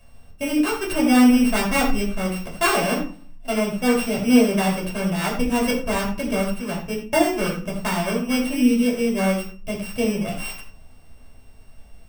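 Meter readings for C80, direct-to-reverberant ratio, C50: 9.5 dB, -4.0 dB, 6.5 dB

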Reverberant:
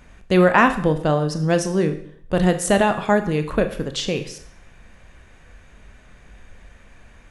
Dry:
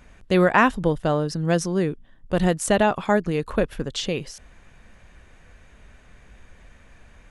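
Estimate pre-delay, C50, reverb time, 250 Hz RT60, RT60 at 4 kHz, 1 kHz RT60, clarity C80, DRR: 21 ms, 12.5 dB, 0.60 s, 0.60 s, 0.60 s, 0.65 s, 14.5 dB, 8.0 dB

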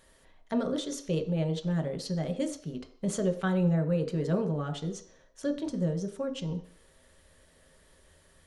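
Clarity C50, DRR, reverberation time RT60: 11.5 dB, 4.0 dB, 0.55 s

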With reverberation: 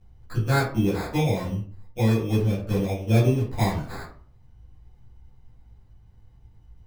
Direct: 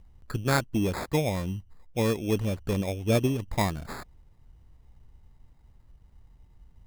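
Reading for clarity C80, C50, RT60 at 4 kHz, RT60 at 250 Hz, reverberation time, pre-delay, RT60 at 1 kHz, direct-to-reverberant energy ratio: 10.5 dB, 6.0 dB, 0.25 s, 0.55 s, 0.45 s, 8 ms, 0.45 s, -11.5 dB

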